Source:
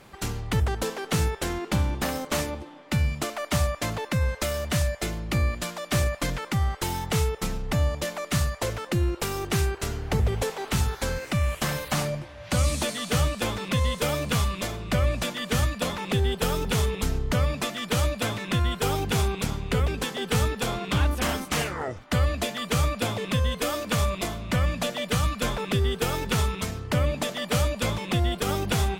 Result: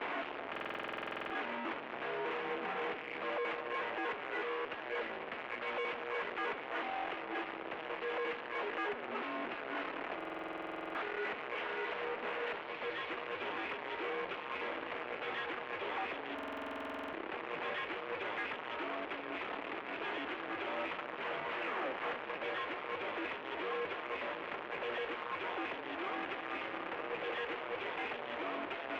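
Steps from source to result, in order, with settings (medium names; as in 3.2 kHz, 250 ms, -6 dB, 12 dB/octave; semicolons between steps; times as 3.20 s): one-bit comparator; peak limiter -35 dBFS, peak gain reduction 20 dB; mistuned SSB -110 Hz 460–2900 Hz; on a send: two-band feedback delay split 980 Hz, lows 257 ms, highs 730 ms, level -12.5 dB; on the sum: Chebyshev shaper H 6 -34 dB, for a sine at -25.5 dBFS; buffer glitch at 0.51/10.16/16.34 s, samples 2048, times 16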